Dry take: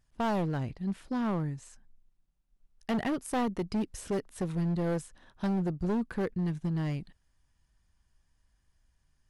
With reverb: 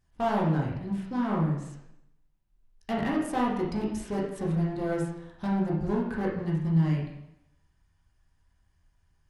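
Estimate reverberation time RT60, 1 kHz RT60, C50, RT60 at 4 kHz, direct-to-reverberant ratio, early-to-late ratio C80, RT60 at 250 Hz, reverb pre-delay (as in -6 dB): 0.85 s, 0.80 s, 3.0 dB, 0.75 s, -4.0 dB, 6.5 dB, 0.80 s, 7 ms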